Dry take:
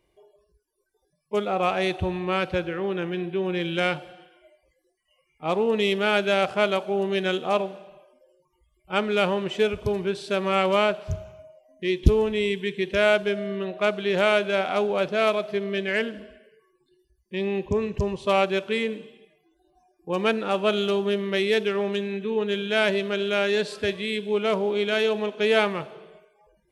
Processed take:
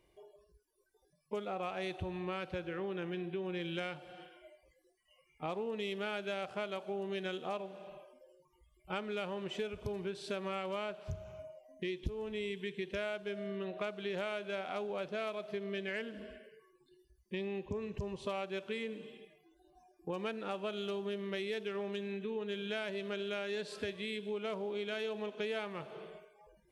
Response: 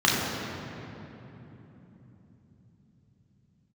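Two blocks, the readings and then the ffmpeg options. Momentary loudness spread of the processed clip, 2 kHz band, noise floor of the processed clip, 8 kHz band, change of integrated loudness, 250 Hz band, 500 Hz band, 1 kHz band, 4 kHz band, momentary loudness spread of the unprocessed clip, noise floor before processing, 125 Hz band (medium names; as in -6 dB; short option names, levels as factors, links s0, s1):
8 LU, -15.5 dB, -72 dBFS, no reading, -15.0 dB, -13.5 dB, -15.0 dB, -15.5 dB, -14.5 dB, 7 LU, -71 dBFS, -14.0 dB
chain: -af "acompressor=threshold=0.0158:ratio=5,volume=0.841"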